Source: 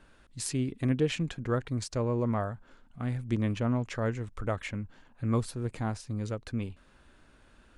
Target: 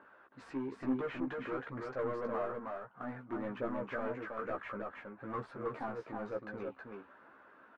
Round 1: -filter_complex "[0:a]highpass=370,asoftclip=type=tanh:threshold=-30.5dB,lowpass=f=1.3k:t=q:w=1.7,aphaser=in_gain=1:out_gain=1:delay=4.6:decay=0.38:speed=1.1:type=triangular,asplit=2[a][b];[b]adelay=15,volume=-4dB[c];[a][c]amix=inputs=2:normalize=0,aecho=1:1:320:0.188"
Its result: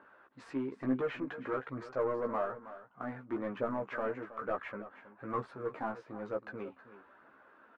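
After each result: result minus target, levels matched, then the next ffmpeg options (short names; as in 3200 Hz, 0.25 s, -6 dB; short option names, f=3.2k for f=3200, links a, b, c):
echo-to-direct -10.5 dB; soft clip: distortion -5 dB
-filter_complex "[0:a]highpass=370,asoftclip=type=tanh:threshold=-30.5dB,lowpass=f=1.3k:t=q:w=1.7,aphaser=in_gain=1:out_gain=1:delay=4.6:decay=0.38:speed=1.1:type=triangular,asplit=2[a][b];[b]adelay=15,volume=-4dB[c];[a][c]amix=inputs=2:normalize=0,aecho=1:1:320:0.631"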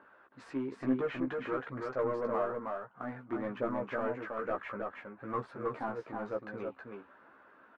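soft clip: distortion -5 dB
-filter_complex "[0:a]highpass=370,asoftclip=type=tanh:threshold=-37dB,lowpass=f=1.3k:t=q:w=1.7,aphaser=in_gain=1:out_gain=1:delay=4.6:decay=0.38:speed=1.1:type=triangular,asplit=2[a][b];[b]adelay=15,volume=-4dB[c];[a][c]amix=inputs=2:normalize=0,aecho=1:1:320:0.631"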